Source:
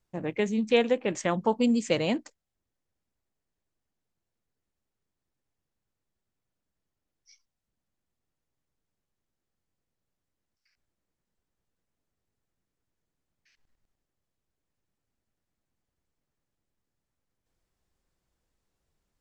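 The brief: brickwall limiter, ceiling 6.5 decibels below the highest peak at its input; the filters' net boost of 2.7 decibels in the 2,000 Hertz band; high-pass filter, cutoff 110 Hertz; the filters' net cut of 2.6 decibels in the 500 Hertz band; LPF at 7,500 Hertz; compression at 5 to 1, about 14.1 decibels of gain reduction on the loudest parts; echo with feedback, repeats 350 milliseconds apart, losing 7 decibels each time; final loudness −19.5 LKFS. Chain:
high-pass filter 110 Hz
low-pass filter 7,500 Hz
parametric band 500 Hz −3 dB
parametric band 2,000 Hz +3.5 dB
downward compressor 5 to 1, threshold −37 dBFS
brickwall limiter −29 dBFS
repeating echo 350 ms, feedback 45%, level −7 dB
level +22.5 dB

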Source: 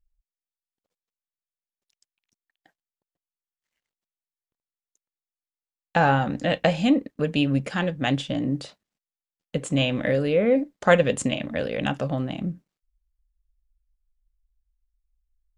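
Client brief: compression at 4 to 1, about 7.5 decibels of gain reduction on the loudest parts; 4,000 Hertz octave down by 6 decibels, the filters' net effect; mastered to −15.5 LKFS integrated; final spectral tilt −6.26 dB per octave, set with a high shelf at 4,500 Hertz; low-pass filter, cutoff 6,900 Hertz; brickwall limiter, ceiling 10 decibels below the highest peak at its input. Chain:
low-pass filter 6,900 Hz
parametric band 4,000 Hz −5.5 dB
high-shelf EQ 4,500 Hz −7.5 dB
downward compressor 4 to 1, threshold −21 dBFS
level +13.5 dB
brickwall limiter −5 dBFS

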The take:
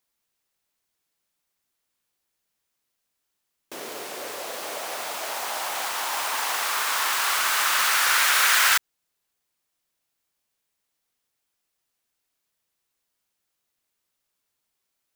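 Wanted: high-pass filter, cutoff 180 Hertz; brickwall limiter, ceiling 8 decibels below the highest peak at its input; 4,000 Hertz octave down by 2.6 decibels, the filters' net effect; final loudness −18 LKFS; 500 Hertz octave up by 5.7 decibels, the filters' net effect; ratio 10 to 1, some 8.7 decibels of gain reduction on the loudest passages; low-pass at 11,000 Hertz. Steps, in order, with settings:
high-pass filter 180 Hz
low-pass filter 11,000 Hz
parametric band 500 Hz +7.5 dB
parametric band 4,000 Hz −3.5 dB
downward compressor 10 to 1, threshold −25 dBFS
level +14 dB
brickwall limiter −9 dBFS

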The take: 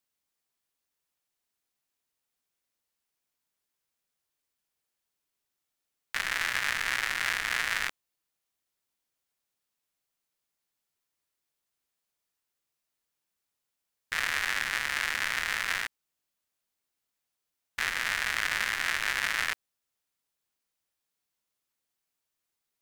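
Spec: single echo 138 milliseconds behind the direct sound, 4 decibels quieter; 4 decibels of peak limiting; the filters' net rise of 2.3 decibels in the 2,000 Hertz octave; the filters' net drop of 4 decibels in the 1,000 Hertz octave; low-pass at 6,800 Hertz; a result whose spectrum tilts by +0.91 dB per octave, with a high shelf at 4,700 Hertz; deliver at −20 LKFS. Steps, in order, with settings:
low-pass filter 6,800 Hz
parametric band 1,000 Hz −8.5 dB
parametric band 2,000 Hz +4 dB
high-shelf EQ 4,700 Hz +6.5 dB
brickwall limiter −14 dBFS
single-tap delay 138 ms −4 dB
level +7 dB

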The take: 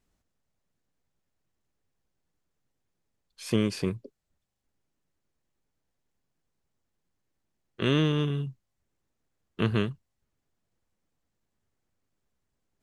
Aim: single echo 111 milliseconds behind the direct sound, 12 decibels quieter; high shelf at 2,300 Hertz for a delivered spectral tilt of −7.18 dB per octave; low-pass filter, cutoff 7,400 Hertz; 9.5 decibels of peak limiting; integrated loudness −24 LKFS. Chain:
low-pass filter 7,400 Hz
high-shelf EQ 2,300 Hz −8.5 dB
brickwall limiter −21.5 dBFS
single-tap delay 111 ms −12 dB
level +9.5 dB

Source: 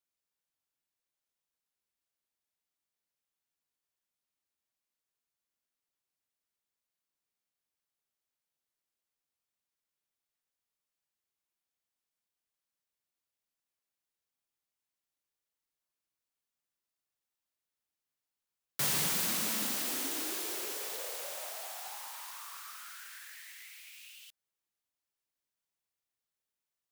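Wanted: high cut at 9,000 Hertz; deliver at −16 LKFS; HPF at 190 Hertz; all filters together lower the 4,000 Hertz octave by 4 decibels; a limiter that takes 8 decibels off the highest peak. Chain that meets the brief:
high-pass filter 190 Hz
low-pass filter 9,000 Hz
parametric band 4,000 Hz −5 dB
level +27 dB
brickwall limiter −5 dBFS

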